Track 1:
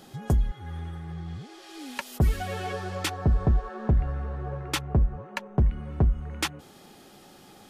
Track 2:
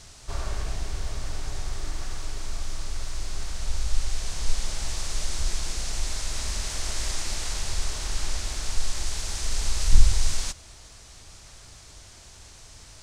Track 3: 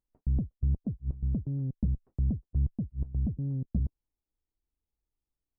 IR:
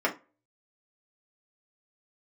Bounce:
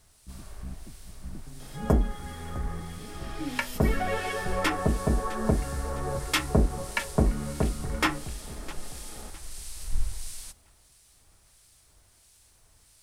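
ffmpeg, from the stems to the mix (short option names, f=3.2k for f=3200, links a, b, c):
-filter_complex "[0:a]adelay=1600,volume=-0.5dB,asplit=3[a][b][c];[b]volume=-5.5dB[d];[c]volume=-11.5dB[e];[1:a]aexciter=amount=6.2:drive=3.9:freq=9k,volume=-12dB[f];[2:a]tremolo=f=120:d=1,volume=-8dB[g];[3:a]atrim=start_sample=2205[h];[d][h]afir=irnorm=-1:irlink=0[i];[e]aecho=0:1:658|1316|1974|2632|3290:1|0.36|0.13|0.0467|0.0168[j];[a][f][g][i][j]amix=inputs=5:normalize=0,acrossover=split=2000[k][l];[k]aeval=exprs='val(0)*(1-0.5/2+0.5/2*cos(2*PI*1.5*n/s))':c=same[m];[l]aeval=exprs='val(0)*(1-0.5/2-0.5/2*cos(2*PI*1.5*n/s))':c=same[n];[m][n]amix=inputs=2:normalize=0,acrusher=bits=11:mix=0:aa=0.000001"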